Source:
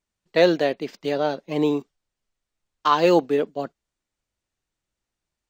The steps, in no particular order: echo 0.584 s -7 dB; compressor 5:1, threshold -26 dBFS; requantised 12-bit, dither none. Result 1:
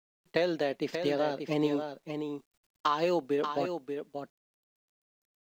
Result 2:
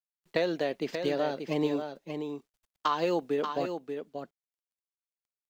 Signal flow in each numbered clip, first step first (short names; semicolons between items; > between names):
compressor > echo > requantised; compressor > requantised > echo